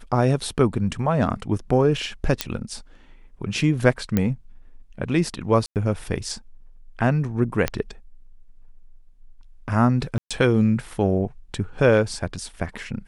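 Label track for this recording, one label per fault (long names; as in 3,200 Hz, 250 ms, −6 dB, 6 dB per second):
2.410000	2.410000	click −4 dBFS
4.170000	4.170000	click −8 dBFS
5.660000	5.760000	drop-out 98 ms
7.680000	7.680000	click −7 dBFS
10.180000	10.310000	drop-out 126 ms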